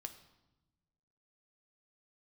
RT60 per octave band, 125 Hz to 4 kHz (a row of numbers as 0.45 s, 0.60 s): 1.7 s, 1.5 s, 1.1 s, 0.95 s, 0.80 s, 0.80 s